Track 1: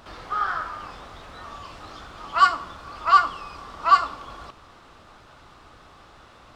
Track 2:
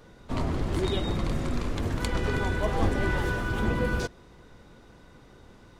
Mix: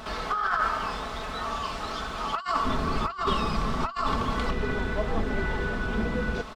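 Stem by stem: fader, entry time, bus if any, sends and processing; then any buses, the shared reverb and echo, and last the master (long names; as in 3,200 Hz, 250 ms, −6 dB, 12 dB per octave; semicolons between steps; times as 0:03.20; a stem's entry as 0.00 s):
+2.5 dB, 0.00 s, no send, no processing
−2.5 dB, 2.35 s, no send, low-pass filter 3,400 Hz 12 dB per octave; downward compressor 2 to 1, threshold −31 dBFS, peak gain reduction 7 dB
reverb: not used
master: comb filter 4.6 ms, depth 54%; compressor whose output falls as the input rises −27 dBFS, ratio −1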